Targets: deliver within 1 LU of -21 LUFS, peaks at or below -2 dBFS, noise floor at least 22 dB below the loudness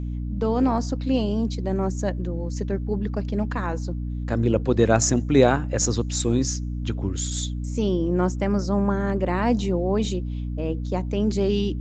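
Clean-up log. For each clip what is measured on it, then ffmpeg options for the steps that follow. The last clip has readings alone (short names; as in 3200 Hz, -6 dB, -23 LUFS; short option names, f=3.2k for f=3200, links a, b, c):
hum 60 Hz; harmonics up to 300 Hz; hum level -26 dBFS; loudness -24.0 LUFS; peak -4.0 dBFS; loudness target -21.0 LUFS
-> -af "bandreject=f=60:t=h:w=4,bandreject=f=120:t=h:w=4,bandreject=f=180:t=h:w=4,bandreject=f=240:t=h:w=4,bandreject=f=300:t=h:w=4"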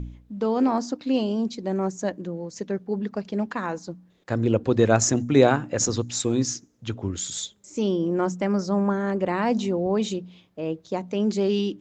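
hum none; loudness -25.0 LUFS; peak -3.5 dBFS; loudness target -21.0 LUFS
-> -af "volume=4dB,alimiter=limit=-2dB:level=0:latency=1"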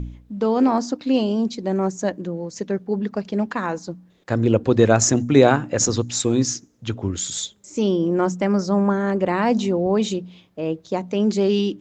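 loudness -21.0 LUFS; peak -2.0 dBFS; noise floor -55 dBFS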